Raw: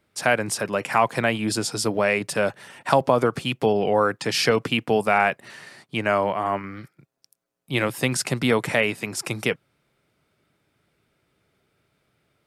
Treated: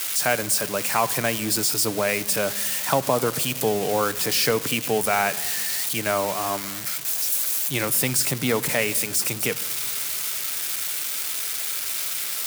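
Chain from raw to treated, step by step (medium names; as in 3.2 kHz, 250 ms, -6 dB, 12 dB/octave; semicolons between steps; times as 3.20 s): zero-crossing glitches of -14 dBFS; simulated room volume 3200 m³, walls mixed, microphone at 0.39 m; trim -3 dB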